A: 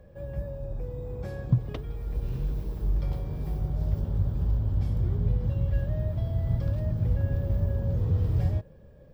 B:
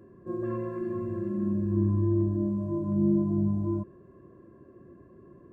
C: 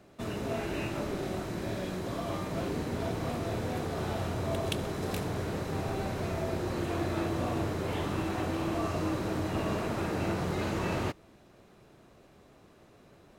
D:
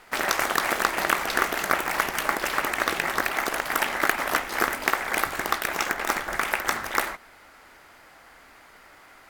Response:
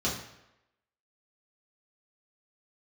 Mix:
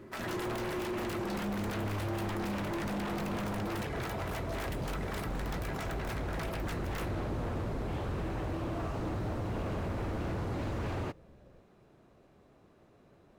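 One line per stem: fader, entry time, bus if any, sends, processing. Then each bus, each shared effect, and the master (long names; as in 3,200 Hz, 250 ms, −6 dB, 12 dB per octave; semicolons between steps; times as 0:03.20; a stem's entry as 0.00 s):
−7.0 dB, 2.45 s, no send, no processing
+2.0 dB, 0.00 s, no send, soft clipping −29.5 dBFS, distortion −8 dB
−3.5 dB, 0.00 s, no send, no processing
−0.5 dB, 0.00 s, no send, reverb reduction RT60 0.72 s; tuned comb filter 330 Hz, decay 0.17 s, harmonics all, mix 70%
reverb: not used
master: wave folding −29.5 dBFS; high-shelf EQ 2,300 Hz −8 dB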